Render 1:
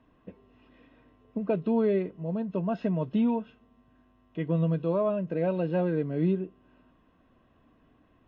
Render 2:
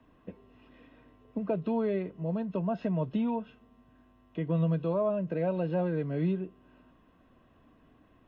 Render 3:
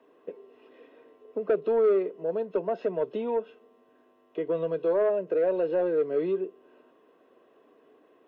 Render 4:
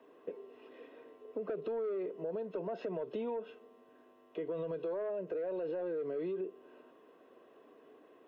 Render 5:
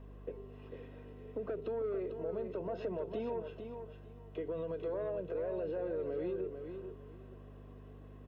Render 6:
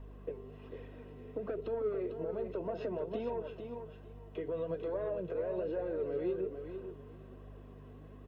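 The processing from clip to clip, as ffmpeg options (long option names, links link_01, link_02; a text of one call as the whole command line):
ffmpeg -i in.wav -filter_complex "[0:a]acrossover=split=170|570|980[link_01][link_02][link_03][link_04];[link_02]acompressor=threshold=-36dB:ratio=6[link_05];[link_04]alimiter=level_in=19dB:limit=-24dB:level=0:latency=1:release=167,volume=-19dB[link_06];[link_01][link_05][link_03][link_06]amix=inputs=4:normalize=0,volume=1.5dB" out.wav
ffmpeg -i in.wav -af "highpass=frequency=420:width_type=q:width=4.5,asoftclip=type=tanh:threshold=-16.5dB" out.wav
ffmpeg -i in.wav -af "alimiter=level_in=4dB:limit=-24dB:level=0:latency=1:release=44,volume=-4dB,acompressor=threshold=-34dB:ratio=6" out.wav
ffmpeg -i in.wav -af "aeval=exprs='val(0)+0.00355*(sin(2*PI*50*n/s)+sin(2*PI*2*50*n/s)/2+sin(2*PI*3*50*n/s)/3+sin(2*PI*4*50*n/s)/4+sin(2*PI*5*50*n/s)/5)':channel_layout=same,aecho=1:1:448|896|1344:0.422|0.097|0.0223,volume=-1dB" out.wav
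ffmpeg -i in.wav -af "flanger=delay=0.9:depth=7.9:regen=59:speed=1.2:shape=triangular,volume=5.5dB" out.wav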